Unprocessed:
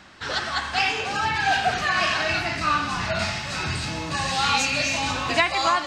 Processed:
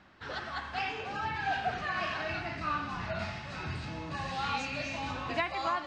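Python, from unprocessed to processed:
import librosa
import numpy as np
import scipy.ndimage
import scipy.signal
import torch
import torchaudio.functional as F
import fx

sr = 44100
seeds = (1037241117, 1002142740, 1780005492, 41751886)

y = fx.spacing_loss(x, sr, db_at_10k=21)
y = y * librosa.db_to_amplitude(-8.0)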